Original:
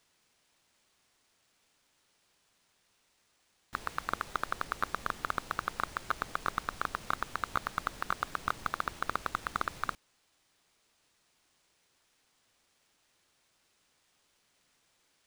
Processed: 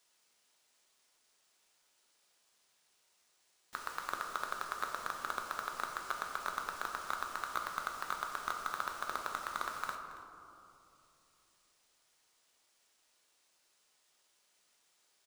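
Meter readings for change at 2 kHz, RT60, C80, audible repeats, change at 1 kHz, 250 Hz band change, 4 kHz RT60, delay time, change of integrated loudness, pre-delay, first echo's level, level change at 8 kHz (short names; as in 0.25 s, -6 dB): -3.5 dB, 2.8 s, 6.0 dB, 1, -3.0 dB, -8.5 dB, 1.1 s, 0.277 s, -3.5 dB, 5 ms, -17.5 dB, +1.0 dB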